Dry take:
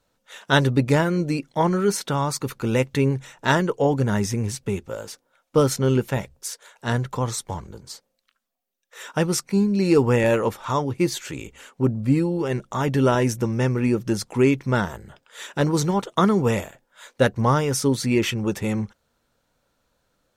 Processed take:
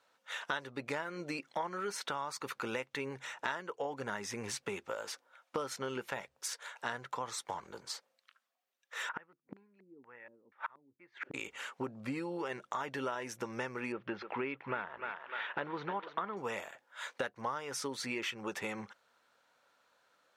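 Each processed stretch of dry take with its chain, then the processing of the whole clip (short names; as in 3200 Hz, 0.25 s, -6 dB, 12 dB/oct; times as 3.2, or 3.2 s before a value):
9.09–11.34 LFO low-pass square 2.1 Hz 280–1900 Hz + flipped gate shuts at -21 dBFS, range -35 dB
13.92–16.37 inverse Chebyshev low-pass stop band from 9200 Hz, stop band 60 dB + thinning echo 0.3 s, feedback 50%, high-pass 590 Hz, level -10 dB
whole clip: HPF 1300 Hz 12 dB/oct; tilt -4.5 dB/oct; compressor 6:1, threshold -44 dBFS; gain +8.5 dB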